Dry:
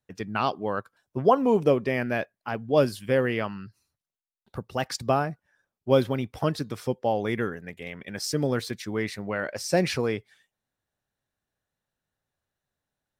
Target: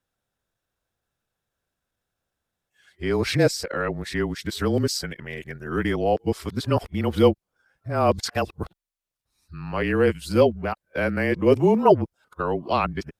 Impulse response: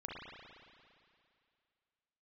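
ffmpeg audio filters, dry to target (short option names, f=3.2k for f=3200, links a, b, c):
-af "areverse,afreqshift=-27,asetrate=41625,aresample=44100,atempo=1.05946,volume=3.5dB"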